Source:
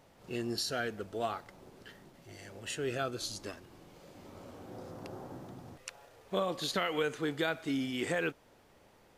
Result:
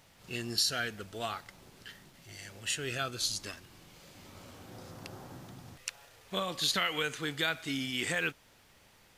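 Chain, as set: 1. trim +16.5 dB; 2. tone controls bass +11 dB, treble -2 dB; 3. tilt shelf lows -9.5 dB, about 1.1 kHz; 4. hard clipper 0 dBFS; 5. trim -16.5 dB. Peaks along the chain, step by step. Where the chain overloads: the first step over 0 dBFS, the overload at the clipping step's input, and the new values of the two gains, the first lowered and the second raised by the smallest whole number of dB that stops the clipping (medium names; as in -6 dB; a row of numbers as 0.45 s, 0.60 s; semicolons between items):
-0.5 dBFS, -0.5 dBFS, +3.0 dBFS, 0.0 dBFS, -16.5 dBFS; step 3, 3.0 dB; step 1 +13.5 dB, step 5 -13.5 dB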